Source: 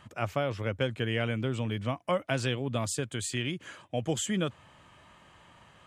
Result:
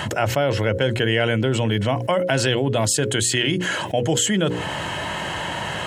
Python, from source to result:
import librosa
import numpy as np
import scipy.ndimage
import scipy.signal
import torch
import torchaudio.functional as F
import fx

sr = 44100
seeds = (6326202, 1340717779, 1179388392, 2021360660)

y = fx.peak_eq(x, sr, hz=240.0, db=-7.0, octaves=0.21)
y = fx.hum_notches(y, sr, base_hz=60, count=9)
y = fx.notch_comb(y, sr, f0_hz=1200.0)
y = fx.env_flatten(y, sr, amount_pct=70)
y = F.gain(torch.from_numpy(y), 9.0).numpy()